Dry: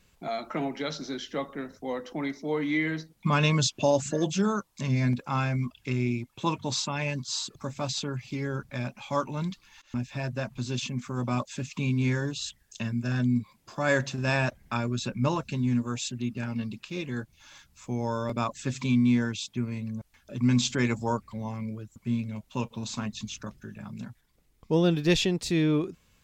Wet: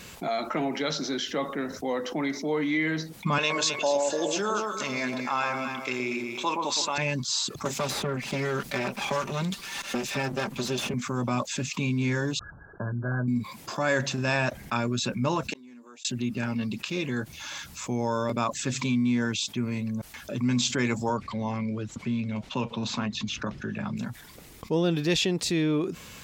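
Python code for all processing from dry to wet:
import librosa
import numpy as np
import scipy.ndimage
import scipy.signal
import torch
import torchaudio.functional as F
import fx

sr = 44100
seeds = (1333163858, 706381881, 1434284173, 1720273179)

y = fx.chain(x, sr, fx.highpass(hz=440.0, slope=12),
    fx.echo_alternate(ms=119, hz=1200.0, feedback_pct=51, wet_db=-4), at=(3.38, 6.98))
y = fx.chain(y, sr, fx.lower_of_two(delay_ms=5.1),
    fx.band_squash(depth_pct=100), at=(7.65, 10.94))
y = fx.chain(y, sr, fx.brickwall_lowpass(high_hz=1700.0),
    fx.peak_eq(hz=230.0, db=-13.5, octaves=0.25), at=(12.39, 13.28))
y = fx.chain(y, sr, fx.highpass(hz=280.0, slope=24),
    fx.gate_flip(shuts_db=-30.0, range_db=-38), at=(15.5, 16.05))
y = fx.chain(y, sr, fx.lowpass(hz=4300.0, slope=12),
    fx.band_squash(depth_pct=40), at=(21.09, 23.97))
y = fx.highpass(y, sr, hz=170.0, slope=6)
y = fx.env_flatten(y, sr, amount_pct=50)
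y = F.gain(torch.from_numpy(y), -2.0).numpy()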